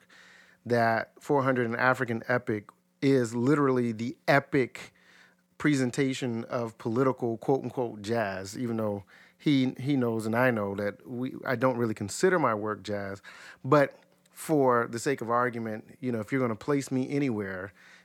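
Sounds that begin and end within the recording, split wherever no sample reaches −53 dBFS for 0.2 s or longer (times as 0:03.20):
0:03.02–0:05.30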